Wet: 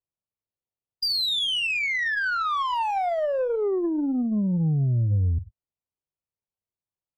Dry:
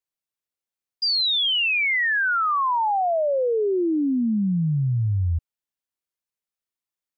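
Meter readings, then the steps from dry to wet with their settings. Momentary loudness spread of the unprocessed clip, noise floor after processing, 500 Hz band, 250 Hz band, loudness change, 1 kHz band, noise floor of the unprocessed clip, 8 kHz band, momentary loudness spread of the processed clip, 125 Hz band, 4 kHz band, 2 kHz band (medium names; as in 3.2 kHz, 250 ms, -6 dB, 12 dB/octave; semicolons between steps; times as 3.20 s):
5 LU, under -85 dBFS, -3.0 dB, -2.5 dB, -3.0 dB, -3.5 dB, under -85 dBFS, no reading, 3 LU, 0.0 dB, -3.5 dB, -4.0 dB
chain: local Wiener filter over 25 samples; ten-band graphic EQ 125 Hz +6 dB, 250 Hz -6 dB, 4 kHz +4 dB; gated-style reverb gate 130 ms falling, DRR 11.5 dB; compression 8:1, threshold -22 dBFS, peak gain reduction 7.5 dB; bass shelf 380 Hz +4 dB; Chebyshev shaper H 2 -20 dB, 5 -25 dB, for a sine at -15.5 dBFS; trim -1.5 dB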